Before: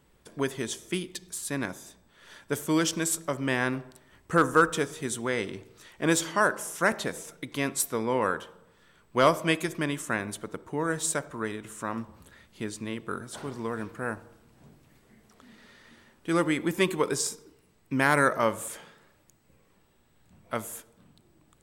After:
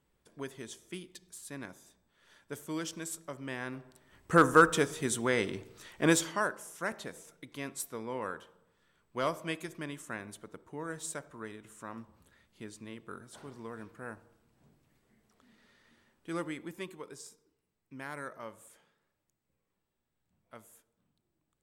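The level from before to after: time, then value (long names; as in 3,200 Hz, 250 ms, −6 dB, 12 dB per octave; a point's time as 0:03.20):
0:03.66 −12 dB
0:04.37 0 dB
0:06.06 0 dB
0:06.58 −11 dB
0:16.38 −11 dB
0:17.02 −19.5 dB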